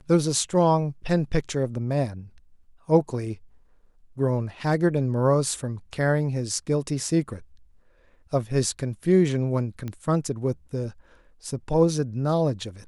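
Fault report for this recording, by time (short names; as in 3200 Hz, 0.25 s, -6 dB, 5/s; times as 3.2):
9.88 pop -20 dBFS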